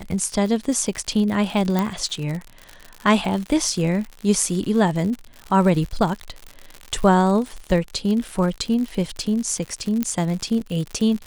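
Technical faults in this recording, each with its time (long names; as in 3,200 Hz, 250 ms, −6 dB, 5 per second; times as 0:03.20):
surface crackle 97 per second −27 dBFS
0:01.79: click −8 dBFS
0:10.03: click −8 dBFS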